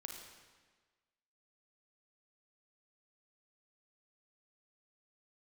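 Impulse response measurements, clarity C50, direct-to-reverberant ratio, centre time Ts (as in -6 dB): 3.0 dB, 2.0 dB, 53 ms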